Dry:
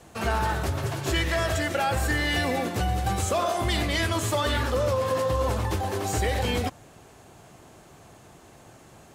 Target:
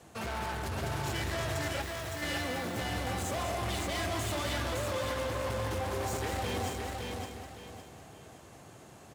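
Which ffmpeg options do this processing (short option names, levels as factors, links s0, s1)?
-filter_complex "[0:a]asoftclip=type=hard:threshold=0.0335,asplit=2[s0][s1];[s1]aecho=0:1:201:0.422[s2];[s0][s2]amix=inputs=2:normalize=0,asplit=3[s3][s4][s5];[s3]afade=t=out:st=1.81:d=0.02[s6];[s4]aeval=exprs='0.01*(abs(mod(val(0)/0.01+3,4)-2)-1)':c=same,afade=t=in:st=1.81:d=0.02,afade=t=out:st=2.21:d=0.02[s7];[s5]afade=t=in:st=2.21:d=0.02[s8];[s6][s7][s8]amix=inputs=3:normalize=0,highpass=54,asplit=2[s9][s10];[s10]aecho=0:1:562|1124|1686|2248:0.668|0.214|0.0684|0.0219[s11];[s9][s11]amix=inputs=2:normalize=0,volume=0.596"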